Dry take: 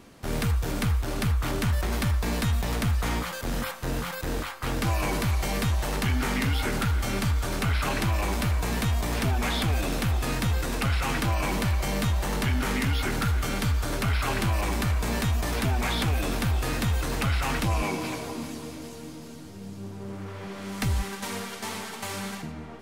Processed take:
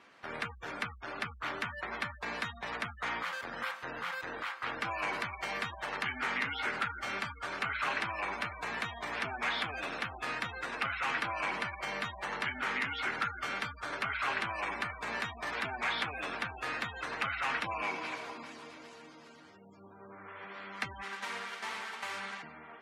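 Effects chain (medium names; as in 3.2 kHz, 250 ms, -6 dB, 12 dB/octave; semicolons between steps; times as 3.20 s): spectral gate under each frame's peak -30 dB strong; band-pass filter 1.7 kHz, Q 1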